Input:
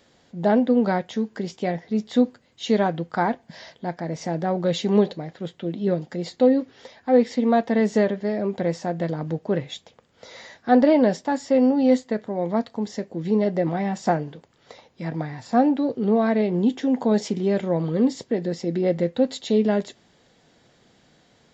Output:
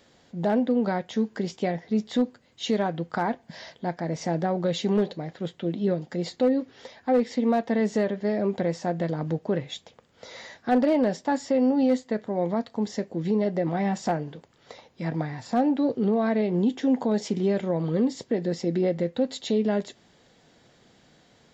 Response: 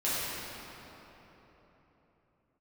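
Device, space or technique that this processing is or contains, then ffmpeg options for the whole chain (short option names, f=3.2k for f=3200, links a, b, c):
clipper into limiter: -af "asoftclip=type=hard:threshold=-10dB,alimiter=limit=-15dB:level=0:latency=1:release=265"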